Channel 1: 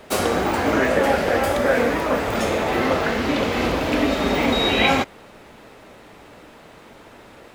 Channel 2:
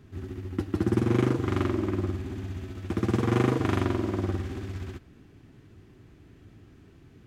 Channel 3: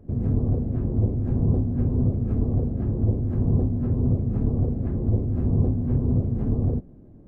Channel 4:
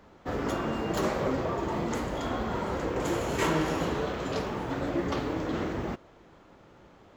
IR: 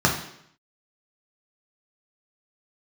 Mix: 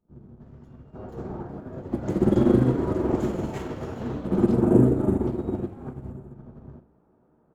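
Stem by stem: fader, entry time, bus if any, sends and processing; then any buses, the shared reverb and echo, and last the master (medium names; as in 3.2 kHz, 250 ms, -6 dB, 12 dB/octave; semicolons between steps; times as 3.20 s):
-2.0 dB, 0.85 s, send -13.5 dB, compressor with a negative ratio -27 dBFS, ratio -1; Bessel low-pass 590 Hz, order 2
0.0 dB, 1.35 s, send -12.5 dB, Chebyshev band-stop 520–7900 Hz, order 4
-1.5 dB, 0.00 s, send -14 dB, peak limiter -21.5 dBFS, peak gain reduction 11 dB; sliding maximum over 65 samples
1.42 s -11.5 dB -> 2.20 s -0.5 dB -> 4.19 s -0.5 dB -> 4.68 s -12 dB, 0.15 s, no send, none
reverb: on, RT60 0.70 s, pre-delay 3 ms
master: peaking EQ 100 Hz -8.5 dB 1.3 oct; upward expansion 2.5:1, over -30 dBFS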